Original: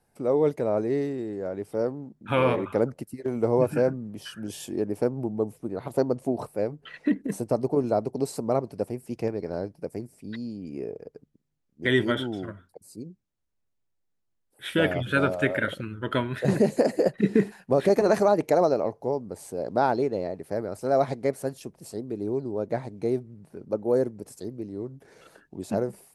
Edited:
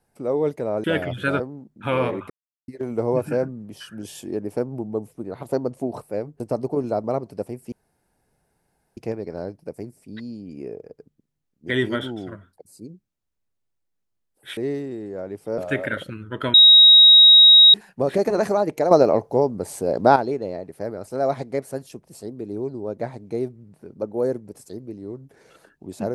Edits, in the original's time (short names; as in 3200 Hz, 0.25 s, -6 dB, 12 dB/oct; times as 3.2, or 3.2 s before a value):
0.84–1.85 swap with 14.73–15.29
2.75–3.13 mute
6.85–7.4 cut
8.04–8.45 cut
9.13 insert room tone 1.25 s
16.25–17.45 bleep 3800 Hz -6.5 dBFS
18.62–19.87 gain +8.5 dB